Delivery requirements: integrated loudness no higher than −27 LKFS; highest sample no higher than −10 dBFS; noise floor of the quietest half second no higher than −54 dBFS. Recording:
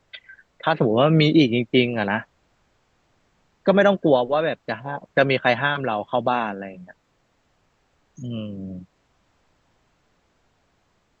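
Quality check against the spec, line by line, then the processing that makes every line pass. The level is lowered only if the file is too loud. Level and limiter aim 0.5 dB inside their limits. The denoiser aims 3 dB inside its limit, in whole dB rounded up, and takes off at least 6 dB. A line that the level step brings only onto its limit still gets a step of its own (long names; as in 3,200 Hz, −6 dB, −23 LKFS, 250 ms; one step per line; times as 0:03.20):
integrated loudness −21.0 LKFS: out of spec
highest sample −4.5 dBFS: out of spec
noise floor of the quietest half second −66 dBFS: in spec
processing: level −6.5 dB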